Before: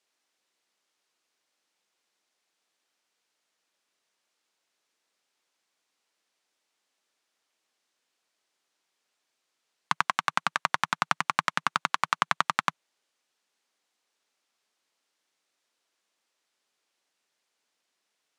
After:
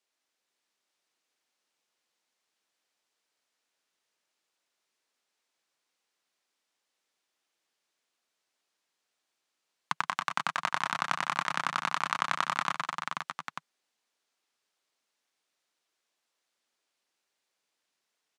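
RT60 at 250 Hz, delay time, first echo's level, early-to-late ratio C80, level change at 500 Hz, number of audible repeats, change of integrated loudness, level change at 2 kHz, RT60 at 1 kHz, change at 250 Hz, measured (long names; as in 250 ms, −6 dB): no reverb audible, 124 ms, −10.5 dB, no reverb audible, −2.5 dB, 6, −3.5 dB, −3.0 dB, no reverb audible, −3.0 dB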